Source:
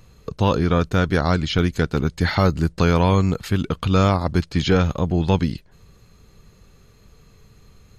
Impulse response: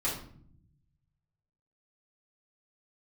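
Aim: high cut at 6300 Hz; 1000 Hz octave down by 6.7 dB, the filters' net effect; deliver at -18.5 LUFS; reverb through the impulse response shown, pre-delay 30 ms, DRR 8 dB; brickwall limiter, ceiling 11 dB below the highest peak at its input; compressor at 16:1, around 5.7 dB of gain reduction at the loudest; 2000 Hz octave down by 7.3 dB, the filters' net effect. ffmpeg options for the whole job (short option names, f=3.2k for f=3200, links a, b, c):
-filter_complex "[0:a]lowpass=6.3k,equalizer=f=1k:t=o:g=-6.5,equalizer=f=2k:t=o:g=-7.5,acompressor=threshold=-19dB:ratio=16,alimiter=limit=-23.5dB:level=0:latency=1,asplit=2[a][b];[1:a]atrim=start_sample=2205,adelay=30[c];[b][c]afir=irnorm=-1:irlink=0,volume=-14.5dB[d];[a][d]amix=inputs=2:normalize=0,volume=13dB"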